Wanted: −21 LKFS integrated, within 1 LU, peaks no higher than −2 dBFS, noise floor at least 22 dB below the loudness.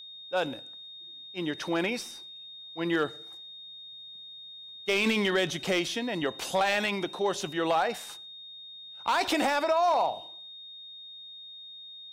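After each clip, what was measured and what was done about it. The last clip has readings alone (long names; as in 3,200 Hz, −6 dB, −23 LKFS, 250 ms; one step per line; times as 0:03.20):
share of clipped samples 0.3%; peaks flattened at −18.5 dBFS; interfering tone 3,700 Hz; level of the tone −43 dBFS; integrated loudness −28.5 LKFS; sample peak −18.5 dBFS; target loudness −21.0 LKFS
→ clipped peaks rebuilt −18.5 dBFS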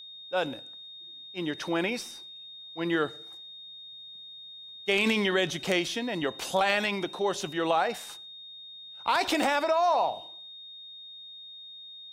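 share of clipped samples 0.0%; interfering tone 3,700 Hz; level of the tone −43 dBFS
→ notch filter 3,700 Hz, Q 30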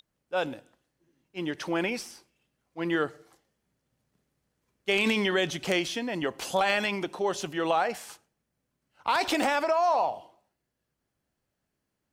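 interfering tone none found; integrated loudness −28.0 LKFS; sample peak −9.5 dBFS; target loudness −21.0 LKFS
→ level +7 dB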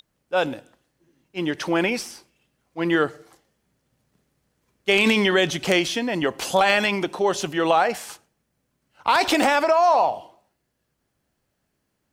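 integrated loudness −21.0 LKFS; sample peak −2.5 dBFS; background noise floor −75 dBFS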